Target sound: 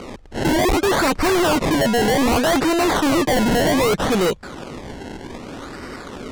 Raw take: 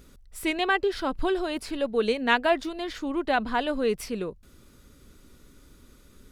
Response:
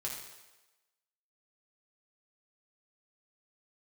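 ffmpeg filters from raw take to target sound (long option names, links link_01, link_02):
-filter_complex "[0:a]asplit=2[link_01][link_02];[link_02]highpass=frequency=720:poles=1,volume=29dB,asoftclip=type=tanh:threshold=-7dB[link_03];[link_01][link_03]amix=inputs=2:normalize=0,lowpass=frequency=2100:poles=1,volume=-6dB,acrusher=samples=25:mix=1:aa=0.000001:lfo=1:lforange=25:lforate=0.64,lowpass=7700,volume=24.5dB,asoftclip=hard,volume=-24.5dB,volume=8.5dB"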